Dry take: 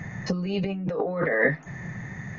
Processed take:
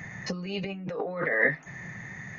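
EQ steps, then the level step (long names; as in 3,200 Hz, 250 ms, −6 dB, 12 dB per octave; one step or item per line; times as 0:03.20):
spectral tilt +1.5 dB per octave
parametric band 2,200 Hz +3.5 dB 0.78 octaves
−3.5 dB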